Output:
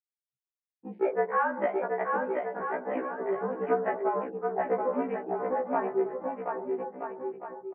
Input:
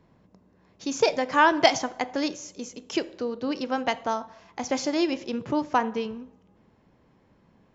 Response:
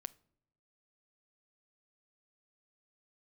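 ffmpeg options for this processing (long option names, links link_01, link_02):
-af "afftfilt=real='re*gte(hypot(re,im),0.0224)':imag='im*gte(hypot(re,im),0.0224)':win_size=1024:overlap=0.75,afwtdn=0.0158,aemphasis=mode=reproduction:type=75fm,alimiter=limit=-15dB:level=0:latency=1:release=494,acompressor=threshold=-26dB:ratio=6,asoftclip=type=tanh:threshold=-18.5dB,aecho=1:1:730|1278|1688|1996|2227:0.631|0.398|0.251|0.158|0.1,highpass=frequency=410:width_type=q:width=0.5412,highpass=frequency=410:width_type=q:width=1.307,lowpass=frequency=2100:width_type=q:width=0.5176,lowpass=frequency=2100:width_type=q:width=0.7071,lowpass=frequency=2100:width_type=q:width=1.932,afreqshift=-70,afftfilt=real='re*1.73*eq(mod(b,3),0)':imag='im*1.73*eq(mod(b,3),0)':win_size=2048:overlap=0.75,volume=7dB"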